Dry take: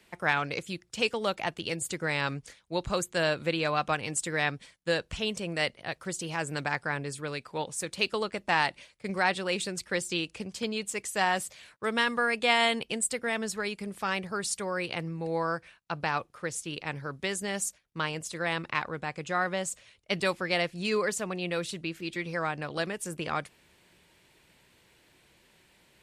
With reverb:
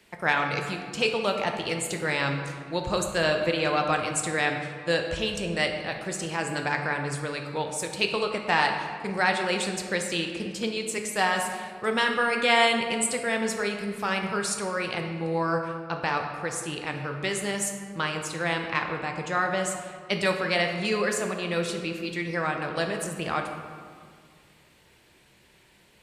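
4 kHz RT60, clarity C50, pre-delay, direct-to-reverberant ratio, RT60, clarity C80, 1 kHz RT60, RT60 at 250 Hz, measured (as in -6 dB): 1.1 s, 5.5 dB, 10 ms, 3.0 dB, 2.0 s, 6.5 dB, 1.9 s, 2.3 s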